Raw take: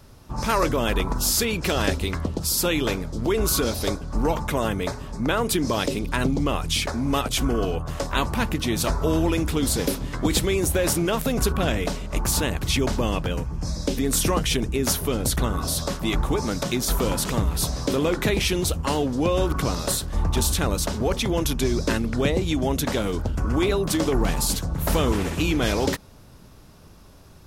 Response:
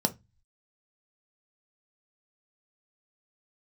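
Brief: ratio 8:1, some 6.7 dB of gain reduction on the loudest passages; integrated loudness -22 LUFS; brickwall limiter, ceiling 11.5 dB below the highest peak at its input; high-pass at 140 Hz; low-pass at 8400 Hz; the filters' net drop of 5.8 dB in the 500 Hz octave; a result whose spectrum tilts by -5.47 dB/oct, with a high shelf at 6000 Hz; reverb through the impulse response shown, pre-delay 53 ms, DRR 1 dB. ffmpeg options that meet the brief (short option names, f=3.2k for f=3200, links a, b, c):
-filter_complex "[0:a]highpass=140,lowpass=8.4k,equalizer=f=500:t=o:g=-7.5,highshelf=f=6k:g=-8,acompressor=threshold=-28dB:ratio=8,alimiter=limit=-24dB:level=0:latency=1,asplit=2[a][b];[1:a]atrim=start_sample=2205,adelay=53[c];[b][c]afir=irnorm=-1:irlink=0,volume=-9dB[d];[a][d]amix=inputs=2:normalize=0,volume=6dB"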